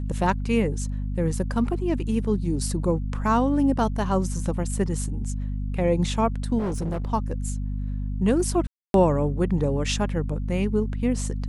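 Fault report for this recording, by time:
hum 50 Hz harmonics 5 -28 dBFS
6.58–7.12 s: clipped -23.5 dBFS
8.67–8.94 s: dropout 272 ms

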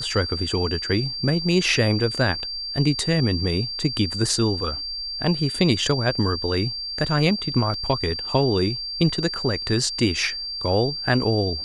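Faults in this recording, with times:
whine 4.7 kHz -28 dBFS
7.74 s: dropout 2.3 ms

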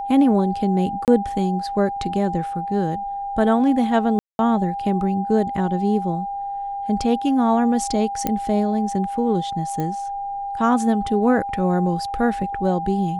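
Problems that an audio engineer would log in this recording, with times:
whine 800 Hz -25 dBFS
1.05–1.08 s: dropout 28 ms
4.19–4.39 s: dropout 201 ms
8.27 s: pop -7 dBFS
9.80 s: pop -14 dBFS

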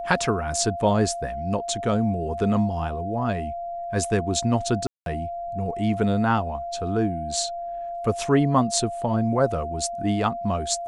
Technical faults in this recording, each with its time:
whine 690 Hz -29 dBFS
4.87–5.06 s: dropout 192 ms

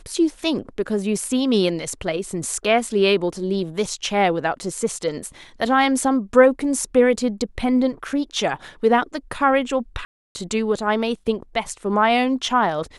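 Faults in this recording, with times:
10.05–10.35 s: dropout 300 ms

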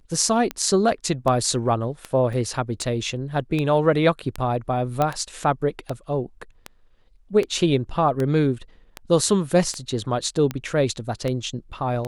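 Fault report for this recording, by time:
tick 78 rpm -13 dBFS
2.33 s: dropout 3.5 ms
5.02 s: pop -9 dBFS

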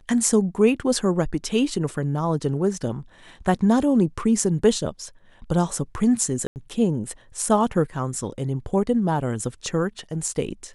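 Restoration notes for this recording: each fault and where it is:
6.47–6.56 s: dropout 89 ms

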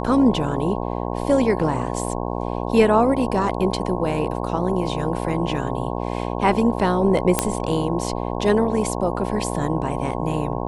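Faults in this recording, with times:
buzz 60 Hz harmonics 18 -26 dBFS
7.39 s: pop -1 dBFS

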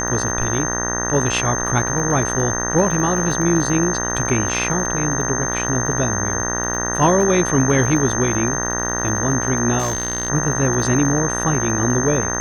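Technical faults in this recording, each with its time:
buzz 60 Hz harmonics 32 -25 dBFS
crackle 50 per s -26 dBFS
whine 6.3 kHz -23 dBFS
9.78–10.30 s: clipped -16.5 dBFS

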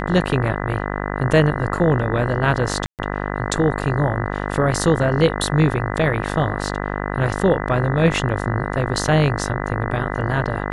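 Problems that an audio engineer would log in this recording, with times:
buzz 50 Hz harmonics 40 -25 dBFS
2.86–2.99 s: dropout 128 ms

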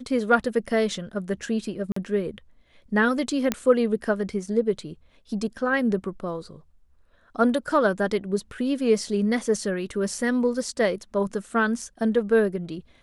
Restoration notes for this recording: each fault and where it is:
1.92–1.96 s: dropout 44 ms
3.52 s: pop -8 dBFS

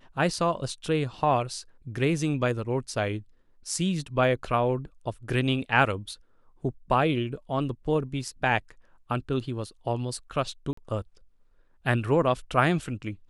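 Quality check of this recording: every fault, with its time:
10.73–10.77 s: dropout 44 ms

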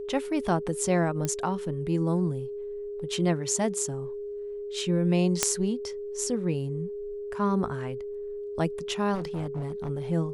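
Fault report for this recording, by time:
whine 410 Hz -33 dBFS
1.25 s: pop -15 dBFS
5.43 s: pop -4 dBFS
9.14–9.90 s: clipped -28 dBFS

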